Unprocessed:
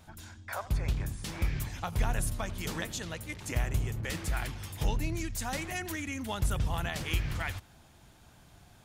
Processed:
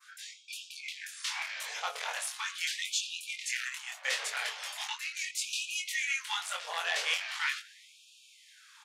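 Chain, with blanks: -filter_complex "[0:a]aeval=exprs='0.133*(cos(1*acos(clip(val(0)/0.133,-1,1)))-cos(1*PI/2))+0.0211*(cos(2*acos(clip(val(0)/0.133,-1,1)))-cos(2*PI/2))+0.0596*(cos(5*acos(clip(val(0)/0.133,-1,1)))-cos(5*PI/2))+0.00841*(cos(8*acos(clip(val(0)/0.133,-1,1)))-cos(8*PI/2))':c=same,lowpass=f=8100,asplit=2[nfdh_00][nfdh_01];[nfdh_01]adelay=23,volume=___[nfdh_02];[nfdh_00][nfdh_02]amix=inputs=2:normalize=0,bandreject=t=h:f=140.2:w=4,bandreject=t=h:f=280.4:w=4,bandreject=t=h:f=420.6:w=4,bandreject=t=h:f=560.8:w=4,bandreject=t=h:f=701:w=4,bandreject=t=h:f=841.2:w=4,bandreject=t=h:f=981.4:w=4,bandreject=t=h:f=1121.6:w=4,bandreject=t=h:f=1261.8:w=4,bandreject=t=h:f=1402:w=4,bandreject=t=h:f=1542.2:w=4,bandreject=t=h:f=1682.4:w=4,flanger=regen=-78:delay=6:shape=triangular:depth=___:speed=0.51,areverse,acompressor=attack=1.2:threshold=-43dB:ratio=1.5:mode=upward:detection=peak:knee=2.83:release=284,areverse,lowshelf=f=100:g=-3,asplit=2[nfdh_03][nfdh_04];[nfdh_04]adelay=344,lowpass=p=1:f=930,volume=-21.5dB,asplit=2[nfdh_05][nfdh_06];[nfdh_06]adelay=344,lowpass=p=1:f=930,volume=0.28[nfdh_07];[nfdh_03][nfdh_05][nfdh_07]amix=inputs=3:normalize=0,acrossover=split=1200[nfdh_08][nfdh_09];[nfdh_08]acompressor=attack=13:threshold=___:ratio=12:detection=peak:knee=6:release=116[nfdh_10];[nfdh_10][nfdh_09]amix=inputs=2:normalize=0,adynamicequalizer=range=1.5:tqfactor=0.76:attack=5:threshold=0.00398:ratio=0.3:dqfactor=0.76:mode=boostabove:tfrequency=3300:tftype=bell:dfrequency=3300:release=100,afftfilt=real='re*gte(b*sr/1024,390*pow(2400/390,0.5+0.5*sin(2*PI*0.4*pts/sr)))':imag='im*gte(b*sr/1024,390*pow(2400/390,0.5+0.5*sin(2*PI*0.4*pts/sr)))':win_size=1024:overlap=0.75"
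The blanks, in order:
-3dB, 4.9, -35dB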